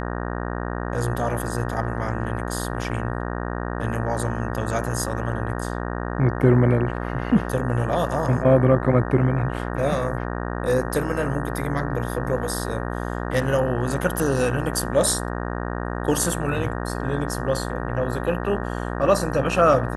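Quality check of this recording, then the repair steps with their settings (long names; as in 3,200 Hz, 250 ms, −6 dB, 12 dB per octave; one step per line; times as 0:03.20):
mains buzz 60 Hz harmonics 31 −28 dBFS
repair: hum removal 60 Hz, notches 31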